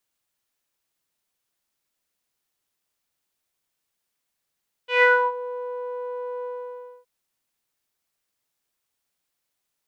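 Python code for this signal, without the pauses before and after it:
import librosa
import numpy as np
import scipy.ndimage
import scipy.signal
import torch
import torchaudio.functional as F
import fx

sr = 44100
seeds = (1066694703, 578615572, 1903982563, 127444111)

y = fx.sub_voice(sr, note=71, wave='saw', cutoff_hz=750.0, q=4.9, env_oct=2.0, env_s=0.49, attack_ms=145.0, decay_s=0.29, sustain_db=-16.5, release_s=0.61, note_s=1.56, slope=12)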